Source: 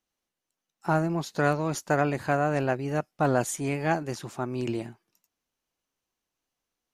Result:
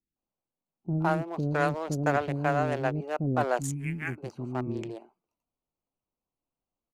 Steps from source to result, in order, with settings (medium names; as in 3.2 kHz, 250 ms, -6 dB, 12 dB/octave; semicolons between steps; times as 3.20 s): local Wiener filter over 25 samples; 3.58–4.02 s: FFT filter 240 Hz 0 dB, 610 Hz -27 dB, 2.2 kHz +6 dB, 4 kHz -24 dB, 9.2 kHz +2 dB; bands offset in time lows, highs 160 ms, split 380 Hz